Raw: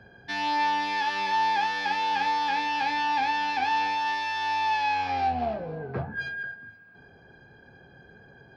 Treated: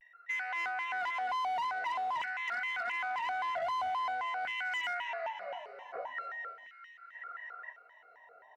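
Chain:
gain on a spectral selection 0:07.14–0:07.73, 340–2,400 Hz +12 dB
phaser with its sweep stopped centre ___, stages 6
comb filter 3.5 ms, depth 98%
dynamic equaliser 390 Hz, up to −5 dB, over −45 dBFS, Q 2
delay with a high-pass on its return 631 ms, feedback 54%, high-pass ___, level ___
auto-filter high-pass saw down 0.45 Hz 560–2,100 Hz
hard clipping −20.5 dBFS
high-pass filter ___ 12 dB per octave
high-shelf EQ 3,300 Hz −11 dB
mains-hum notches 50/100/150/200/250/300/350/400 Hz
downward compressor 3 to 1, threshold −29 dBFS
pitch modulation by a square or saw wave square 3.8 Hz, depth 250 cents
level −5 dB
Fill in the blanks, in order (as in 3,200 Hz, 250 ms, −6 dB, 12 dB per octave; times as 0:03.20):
1,100 Hz, 2,800 Hz, −12.5 dB, 120 Hz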